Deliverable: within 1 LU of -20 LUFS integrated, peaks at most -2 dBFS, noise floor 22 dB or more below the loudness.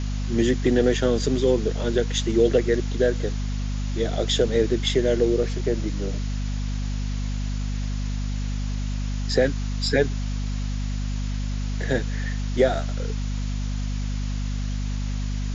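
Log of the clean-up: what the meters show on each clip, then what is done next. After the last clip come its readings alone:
hum 50 Hz; highest harmonic 250 Hz; hum level -24 dBFS; noise floor -27 dBFS; noise floor target -47 dBFS; loudness -25.0 LUFS; peak level -6.5 dBFS; loudness target -20.0 LUFS
-> de-hum 50 Hz, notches 5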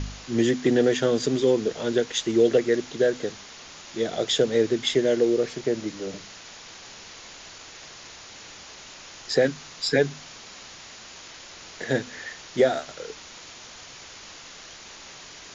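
hum not found; noise floor -45 dBFS; noise floor target -46 dBFS
-> noise print and reduce 6 dB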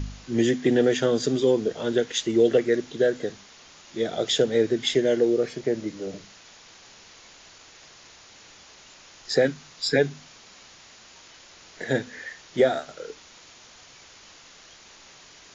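noise floor -50 dBFS; loudness -24.0 LUFS; peak level -8.0 dBFS; loudness target -20.0 LUFS
-> trim +4 dB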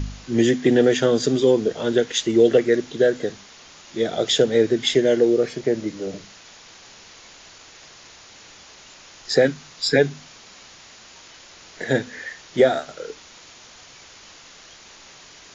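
loudness -20.0 LUFS; peak level -4.0 dBFS; noise floor -46 dBFS

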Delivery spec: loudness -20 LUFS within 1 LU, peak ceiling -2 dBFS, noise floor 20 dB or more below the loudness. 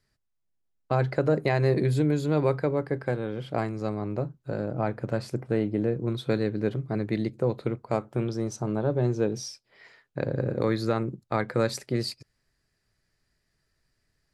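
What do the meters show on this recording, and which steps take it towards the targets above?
loudness -28.0 LUFS; peak level -11.0 dBFS; loudness target -20.0 LUFS
-> trim +8 dB

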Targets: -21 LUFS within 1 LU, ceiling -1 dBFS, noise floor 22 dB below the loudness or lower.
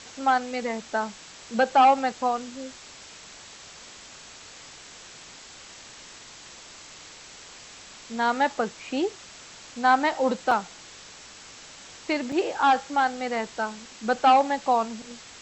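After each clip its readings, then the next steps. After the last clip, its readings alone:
dropouts 2; longest dropout 3.9 ms; noise floor -46 dBFS; noise floor target -47 dBFS; loudness -24.5 LUFS; peak level -10.0 dBFS; loudness target -21.0 LUFS
-> interpolate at 10.51/12.32 s, 3.9 ms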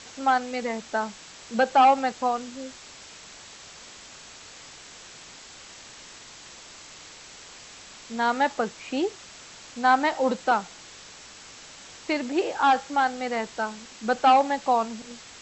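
dropouts 0; noise floor -46 dBFS; noise floor target -47 dBFS
-> noise reduction 6 dB, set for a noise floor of -46 dBFS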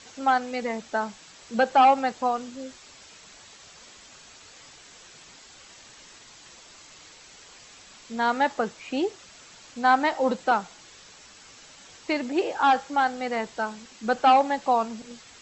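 noise floor -50 dBFS; loudness -24.5 LUFS; peak level -10.0 dBFS; loudness target -21.0 LUFS
-> trim +3.5 dB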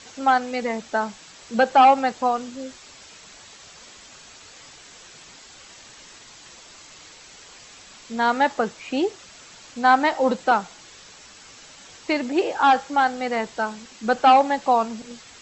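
loudness -21.0 LUFS; peak level -6.5 dBFS; noise floor -47 dBFS

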